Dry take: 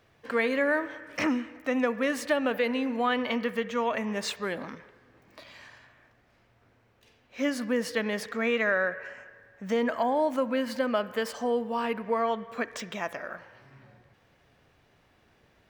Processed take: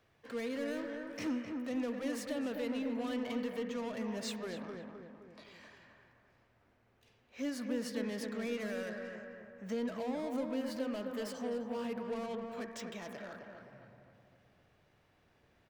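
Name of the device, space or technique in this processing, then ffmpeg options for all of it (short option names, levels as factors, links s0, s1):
one-band saturation: -filter_complex "[0:a]asettb=1/sr,asplit=3[s0][s1][s2];[s0]atrim=end=4.604[s3];[s1]atrim=start=4.6:end=5.45,asetpts=PTS-STARTPTS,afade=t=in:d=0.004:c=qsin,afade=t=out:st=0.846:d=0.004:c=qsin,lowpass=8800[s4];[s2]atrim=start=5.446[s5];[s3][s4]acrossfade=d=0.004:c1=hsin:c2=qsin[s6];[s6][s5]acrossfade=d=0.004:c1=qsin:c2=hsin,acrossover=split=460|3600[s7][s8][s9];[s8]asoftclip=type=tanh:threshold=0.0112[s10];[s7][s10][s9]amix=inputs=3:normalize=0,asplit=2[s11][s12];[s12]adelay=259,lowpass=f=1600:p=1,volume=0.631,asplit=2[s13][s14];[s14]adelay=259,lowpass=f=1600:p=1,volume=0.53,asplit=2[s15][s16];[s16]adelay=259,lowpass=f=1600:p=1,volume=0.53,asplit=2[s17][s18];[s18]adelay=259,lowpass=f=1600:p=1,volume=0.53,asplit=2[s19][s20];[s20]adelay=259,lowpass=f=1600:p=1,volume=0.53,asplit=2[s21][s22];[s22]adelay=259,lowpass=f=1600:p=1,volume=0.53,asplit=2[s23][s24];[s24]adelay=259,lowpass=f=1600:p=1,volume=0.53[s25];[s11][s13][s15][s17][s19][s21][s23][s25]amix=inputs=8:normalize=0,volume=0.422"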